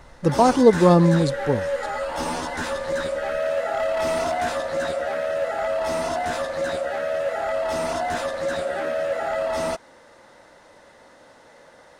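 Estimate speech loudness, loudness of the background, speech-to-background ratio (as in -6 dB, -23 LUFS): -18.0 LUFS, -26.0 LUFS, 8.0 dB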